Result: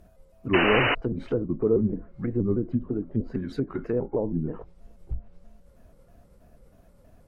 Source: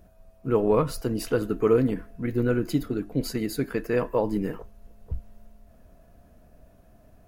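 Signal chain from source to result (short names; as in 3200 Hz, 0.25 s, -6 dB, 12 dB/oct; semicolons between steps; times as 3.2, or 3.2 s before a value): trilling pitch shifter -3.5 st, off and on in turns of 0.16 s; treble ducked by the level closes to 500 Hz, closed at -23 dBFS; painted sound noise, 0.53–0.95, 220–3000 Hz -23 dBFS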